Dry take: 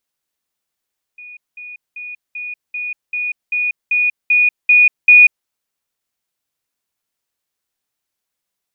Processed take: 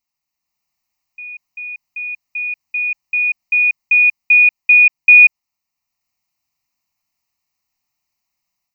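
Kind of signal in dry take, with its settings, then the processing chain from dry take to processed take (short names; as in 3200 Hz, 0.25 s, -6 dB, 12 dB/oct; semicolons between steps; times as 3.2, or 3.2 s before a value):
level ladder 2460 Hz -33 dBFS, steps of 3 dB, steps 11, 0.19 s 0.20 s
AGC gain up to 5.5 dB; fixed phaser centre 2300 Hz, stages 8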